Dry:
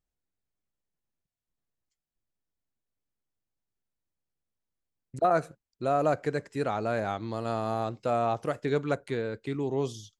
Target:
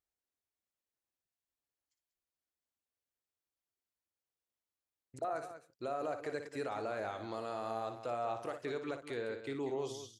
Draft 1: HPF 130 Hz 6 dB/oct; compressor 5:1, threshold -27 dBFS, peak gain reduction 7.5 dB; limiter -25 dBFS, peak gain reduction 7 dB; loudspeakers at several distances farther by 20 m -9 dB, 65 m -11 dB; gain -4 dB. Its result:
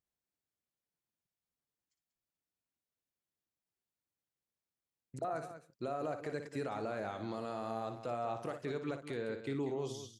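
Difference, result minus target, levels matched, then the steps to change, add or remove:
125 Hz band +6.0 dB
add after HPF: bell 170 Hz -11 dB 1.1 oct

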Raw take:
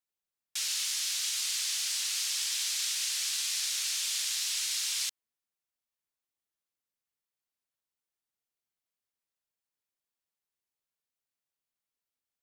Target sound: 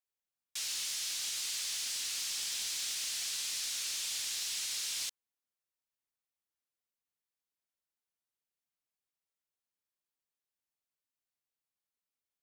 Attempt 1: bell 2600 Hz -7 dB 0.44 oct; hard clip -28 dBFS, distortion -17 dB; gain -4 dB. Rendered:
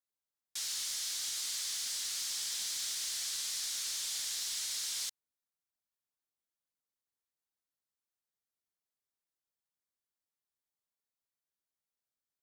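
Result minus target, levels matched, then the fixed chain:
2000 Hz band -3.0 dB
hard clip -28 dBFS, distortion -16 dB; gain -4 dB

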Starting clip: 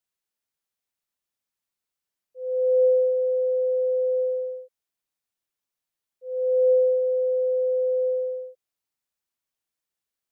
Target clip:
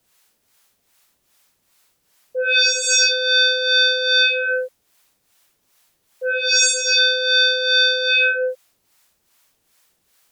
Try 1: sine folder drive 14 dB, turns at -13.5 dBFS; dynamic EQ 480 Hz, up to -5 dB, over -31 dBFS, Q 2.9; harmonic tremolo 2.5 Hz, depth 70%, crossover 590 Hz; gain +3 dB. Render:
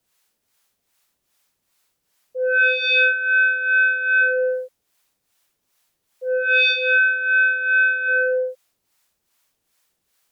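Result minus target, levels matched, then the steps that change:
sine folder: distortion +20 dB
change: sine folder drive 21 dB, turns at -13.5 dBFS

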